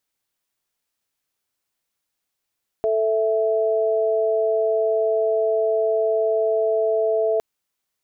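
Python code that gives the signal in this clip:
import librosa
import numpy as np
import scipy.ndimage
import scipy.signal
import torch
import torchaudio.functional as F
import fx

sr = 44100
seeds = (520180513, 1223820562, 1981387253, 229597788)

y = fx.chord(sr, length_s=4.56, notes=(69, 76), wave='sine', level_db=-20.0)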